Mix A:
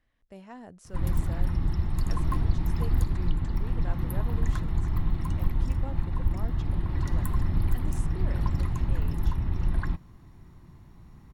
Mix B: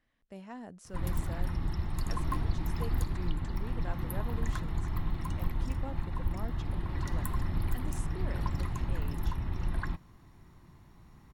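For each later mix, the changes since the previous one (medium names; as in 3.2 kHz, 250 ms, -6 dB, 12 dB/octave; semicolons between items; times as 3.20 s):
speech: add peaking EQ 210 Hz +6 dB 1.3 oct; master: add bass shelf 360 Hz -6.5 dB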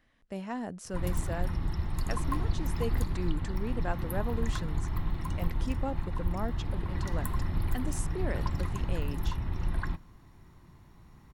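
speech +8.5 dB; reverb: on, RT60 0.75 s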